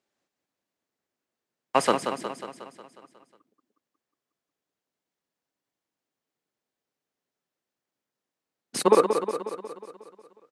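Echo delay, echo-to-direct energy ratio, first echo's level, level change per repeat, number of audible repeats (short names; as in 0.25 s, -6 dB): 0.181 s, -5.5 dB, -7.5 dB, -4.5 dB, 7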